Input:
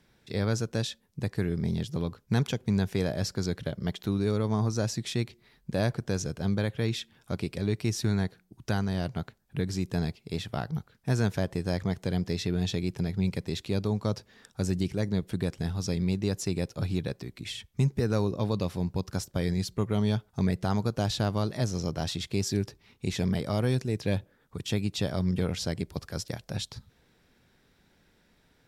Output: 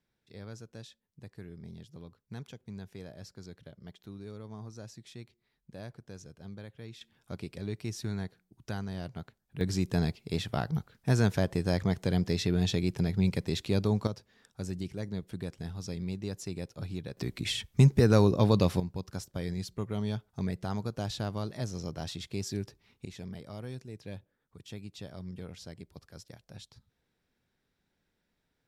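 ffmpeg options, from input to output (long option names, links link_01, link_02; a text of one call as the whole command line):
ffmpeg -i in.wav -af "asetnsamples=nb_out_samples=441:pad=0,asendcmd='7.01 volume volume -8dB;9.61 volume volume 1dB;14.07 volume volume -8dB;17.17 volume volume 5dB;18.8 volume volume -6.5dB;23.05 volume volume -14.5dB',volume=-17dB" out.wav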